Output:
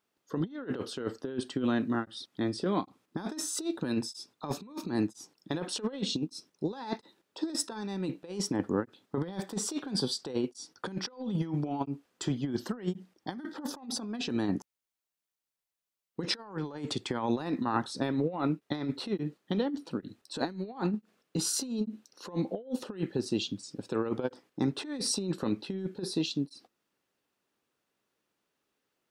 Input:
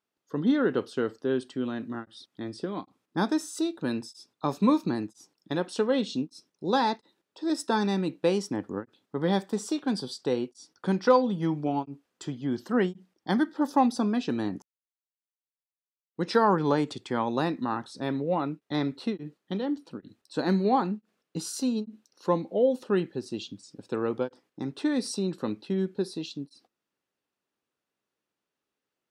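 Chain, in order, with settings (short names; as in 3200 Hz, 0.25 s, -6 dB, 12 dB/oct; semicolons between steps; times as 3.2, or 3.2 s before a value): negative-ratio compressor -31 dBFS, ratio -0.5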